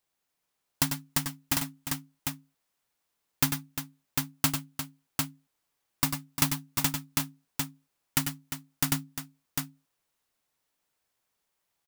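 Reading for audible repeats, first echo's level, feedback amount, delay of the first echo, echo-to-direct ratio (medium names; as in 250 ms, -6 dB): 3, -9.5 dB, no regular repeats, 95 ms, -1.5 dB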